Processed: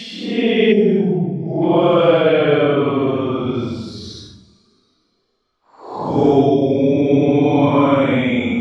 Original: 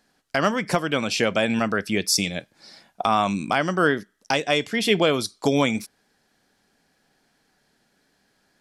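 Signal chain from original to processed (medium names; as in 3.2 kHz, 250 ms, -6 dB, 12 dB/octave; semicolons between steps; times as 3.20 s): tape spacing loss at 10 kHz 35 dB; Paulstretch 10×, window 0.05 s, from 4.84 s; time-frequency box 0.73–1.62 s, 920–4600 Hz -14 dB; trim +7 dB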